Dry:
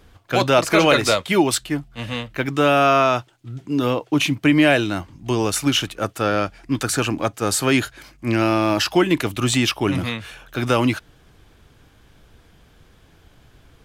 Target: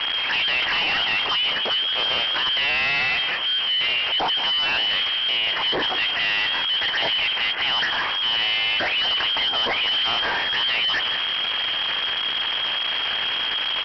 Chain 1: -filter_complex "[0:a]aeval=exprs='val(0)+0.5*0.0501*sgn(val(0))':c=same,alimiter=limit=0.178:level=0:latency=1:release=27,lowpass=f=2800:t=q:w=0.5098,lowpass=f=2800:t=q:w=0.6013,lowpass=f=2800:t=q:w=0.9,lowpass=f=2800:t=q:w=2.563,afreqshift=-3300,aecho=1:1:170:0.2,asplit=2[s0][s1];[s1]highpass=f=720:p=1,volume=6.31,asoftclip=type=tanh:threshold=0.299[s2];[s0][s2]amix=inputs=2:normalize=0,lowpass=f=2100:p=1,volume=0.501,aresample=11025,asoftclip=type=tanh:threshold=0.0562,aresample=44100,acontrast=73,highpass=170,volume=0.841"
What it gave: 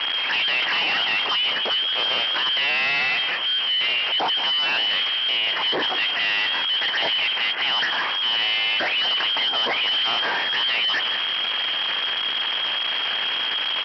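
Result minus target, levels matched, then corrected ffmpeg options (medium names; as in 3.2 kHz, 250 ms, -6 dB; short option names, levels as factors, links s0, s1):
125 Hz band -5.5 dB
-filter_complex "[0:a]aeval=exprs='val(0)+0.5*0.0501*sgn(val(0))':c=same,alimiter=limit=0.178:level=0:latency=1:release=27,lowpass=f=2800:t=q:w=0.5098,lowpass=f=2800:t=q:w=0.6013,lowpass=f=2800:t=q:w=0.9,lowpass=f=2800:t=q:w=2.563,afreqshift=-3300,aecho=1:1:170:0.2,asplit=2[s0][s1];[s1]highpass=f=720:p=1,volume=6.31,asoftclip=type=tanh:threshold=0.299[s2];[s0][s2]amix=inputs=2:normalize=0,lowpass=f=2100:p=1,volume=0.501,aresample=11025,asoftclip=type=tanh:threshold=0.0562,aresample=44100,acontrast=73,volume=0.841"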